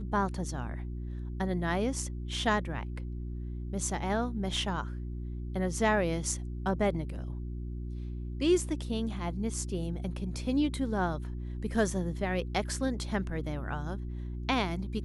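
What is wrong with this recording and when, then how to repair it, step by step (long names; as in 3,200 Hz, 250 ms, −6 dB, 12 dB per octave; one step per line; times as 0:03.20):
mains hum 60 Hz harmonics 6 −37 dBFS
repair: hum removal 60 Hz, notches 6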